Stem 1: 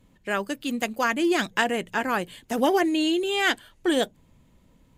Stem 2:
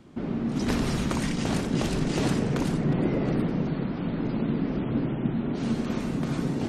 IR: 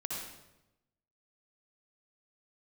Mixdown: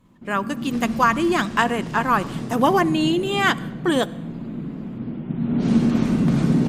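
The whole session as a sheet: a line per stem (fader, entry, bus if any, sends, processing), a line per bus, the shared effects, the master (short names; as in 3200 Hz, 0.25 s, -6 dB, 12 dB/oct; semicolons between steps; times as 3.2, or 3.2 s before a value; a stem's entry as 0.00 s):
-3.0 dB, 0.00 s, send -19.5 dB, bell 1100 Hz +12 dB 0.61 oct
5.23 s -11 dB -> 5.66 s -2 dB, 0.05 s, send -4.5 dB, auto duck -11 dB, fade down 0.25 s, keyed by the first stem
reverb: on, RT60 0.95 s, pre-delay 55 ms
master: bell 190 Hz +7 dB 0.95 oct; AGC gain up to 3 dB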